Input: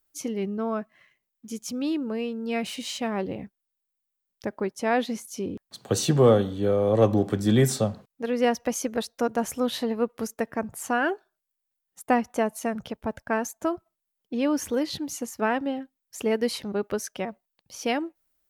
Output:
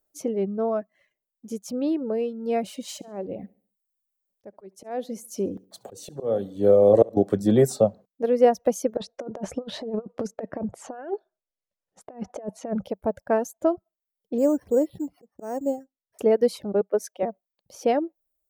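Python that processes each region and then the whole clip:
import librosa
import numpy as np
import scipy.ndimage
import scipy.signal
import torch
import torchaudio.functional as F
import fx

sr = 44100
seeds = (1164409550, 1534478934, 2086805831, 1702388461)

y = fx.chain(x, sr, fx.high_shelf(hz=5500.0, db=6.5),
    fx.auto_swell(attack_ms=504.0),
    fx.echo_feedback(ms=69, feedback_pct=39, wet_db=-13.5), at=(2.88, 7.17))
y = fx.chain(y, sr, fx.over_compress(threshold_db=-31.0, ratio=-0.5),
    fx.air_absorb(metres=110.0), at=(8.97, 12.84))
y = fx.chain(y, sr, fx.lowpass(hz=1000.0, slope=6),
    fx.auto_swell(attack_ms=296.0),
    fx.resample_bad(factor=6, down='filtered', up='hold'), at=(14.38, 16.19))
y = fx.chain(y, sr, fx.highpass(hz=310.0, slope=12),
    fx.band_widen(depth_pct=100), at=(16.81, 17.23))
y = fx.curve_eq(y, sr, hz=(180.0, 600.0, 1000.0, 2700.0, 7400.0), db=(0, 12, 0, -6, -1))
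y = fx.dereverb_blind(y, sr, rt60_s=0.69)
y = fx.peak_eq(y, sr, hz=190.0, db=6.0, octaves=0.28)
y = F.gain(torch.from_numpy(y), -2.5).numpy()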